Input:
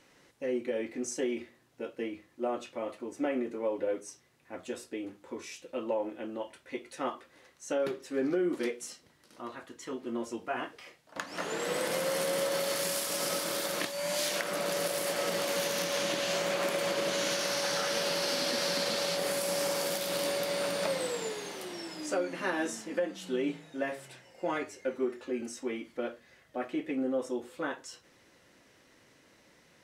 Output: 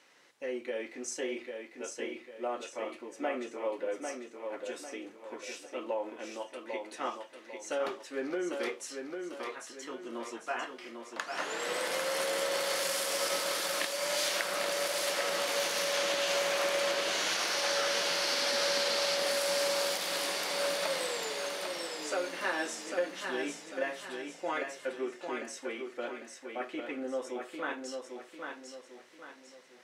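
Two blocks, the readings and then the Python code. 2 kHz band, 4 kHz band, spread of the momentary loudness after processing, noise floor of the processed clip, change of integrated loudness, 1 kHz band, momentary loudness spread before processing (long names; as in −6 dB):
+2.5 dB, +2.0 dB, 14 LU, −54 dBFS, −0.5 dB, +1.0 dB, 13 LU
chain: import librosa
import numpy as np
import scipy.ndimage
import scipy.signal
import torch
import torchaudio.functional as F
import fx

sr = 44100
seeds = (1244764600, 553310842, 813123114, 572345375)

y = fx.weighting(x, sr, curve='A')
y = fx.echo_feedback(y, sr, ms=798, feedback_pct=40, wet_db=-5.5)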